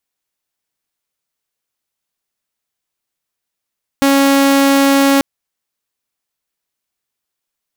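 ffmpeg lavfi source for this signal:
-f lavfi -i "aevalsrc='0.501*(2*mod(276*t,1)-1)':d=1.19:s=44100"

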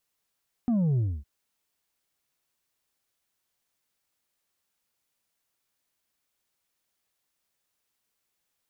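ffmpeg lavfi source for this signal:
-f lavfi -i "aevalsrc='0.0794*clip((0.56-t)/0.26,0,1)*tanh(1.58*sin(2*PI*250*0.56/log(65/250)*(exp(log(65/250)*t/0.56)-1)))/tanh(1.58)':d=0.56:s=44100"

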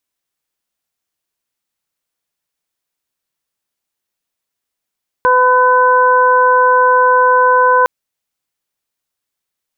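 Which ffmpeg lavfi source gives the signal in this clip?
-f lavfi -i "aevalsrc='0.224*sin(2*PI*503*t)+0.355*sin(2*PI*1006*t)+0.178*sin(2*PI*1509*t)':d=2.61:s=44100"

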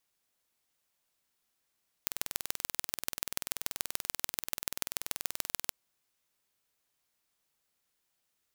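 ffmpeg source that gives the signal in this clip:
-f lavfi -i "aevalsrc='0.75*eq(mod(n,2130),0)*(0.5+0.5*eq(mod(n,6390),0))':d=3.67:s=44100"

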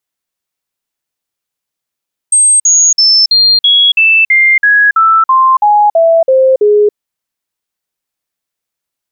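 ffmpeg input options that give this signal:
-f lavfi -i "aevalsrc='0.631*clip(min(mod(t,0.33),0.28-mod(t,0.33))/0.005,0,1)*sin(2*PI*8400*pow(2,-floor(t/0.33)/3)*mod(t,0.33))':d=4.62:s=44100"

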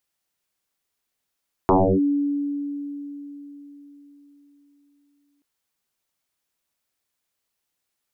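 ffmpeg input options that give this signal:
-f lavfi -i "aevalsrc='0.251*pow(10,-3*t/4.17)*sin(2*PI*286*t+8.8*clip(1-t/0.31,0,1)*sin(2*PI*0.33*286*t))':d=3.73:s=44100"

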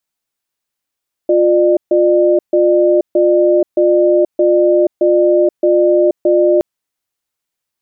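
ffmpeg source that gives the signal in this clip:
-f lavfi -i "aevalsrc='0.299*(sin(2*PI*353*t)+sin(2*PI*601*t))*clip(min(mod(t,0.62),0.48-mod(t,0.62))/0.005,0,1)':d=5.32:s=44100"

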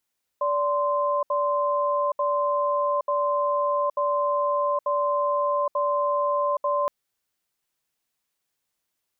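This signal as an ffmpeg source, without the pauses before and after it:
-f lavfi -i "aevalsrc='0.0668*(sin(2*PI*580*t)+sin(2*PI*1040*t))*clip(min(mod(t,0.89),0.82-mod(t,0.89))/0.005,0,1)':d=6.47:s=44100"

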